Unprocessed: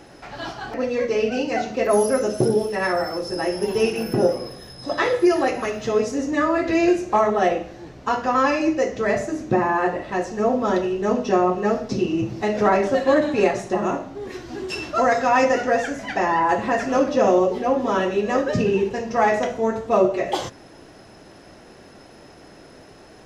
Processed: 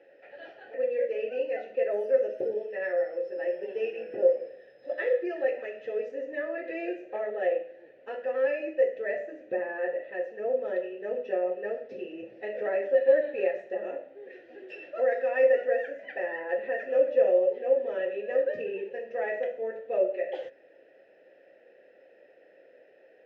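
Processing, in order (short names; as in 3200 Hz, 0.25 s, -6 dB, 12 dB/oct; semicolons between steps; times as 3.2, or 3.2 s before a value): vowel filter e; tone controls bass -8 dB, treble -14 dB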